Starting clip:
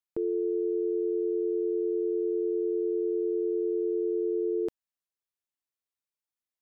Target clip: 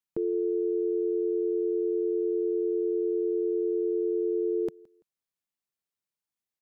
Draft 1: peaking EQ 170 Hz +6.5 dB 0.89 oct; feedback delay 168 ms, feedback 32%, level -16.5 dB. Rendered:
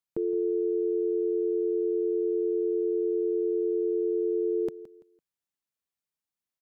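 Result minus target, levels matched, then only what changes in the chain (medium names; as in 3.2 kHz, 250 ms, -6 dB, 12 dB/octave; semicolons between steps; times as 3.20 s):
echo-to-direct +9 dB
change: feedback delay 168 ms, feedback 32%, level -25.5 dB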